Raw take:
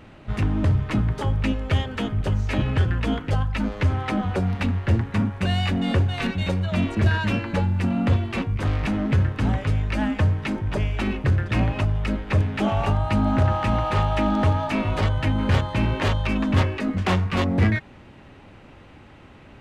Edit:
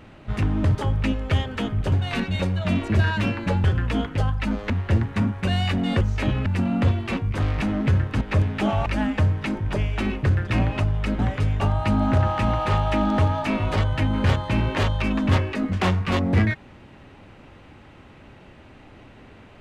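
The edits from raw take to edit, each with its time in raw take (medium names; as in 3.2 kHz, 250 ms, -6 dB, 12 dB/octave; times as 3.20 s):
0.75–1.15 s: delete
2.32–2.77 s: swap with 5.99–7.71 s
3.83–4.68 s: delete
9.46–9.87 s: swap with 12.20–12.85 s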